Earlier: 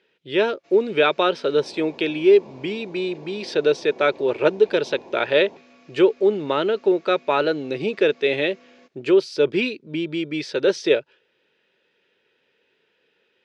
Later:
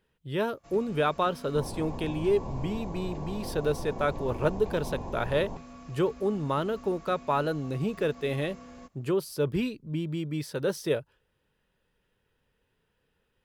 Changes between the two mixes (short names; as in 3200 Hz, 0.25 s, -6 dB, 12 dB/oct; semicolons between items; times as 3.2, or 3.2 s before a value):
speech -10.0 dB; master: remove speaker cabinet 360–5700 Hz, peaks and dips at 370 Hz +5 dB, 760 Hz -5 dB, 1100 Hz -9 dB, 2400 Hz +6 dB, 3700 Hz +3 dB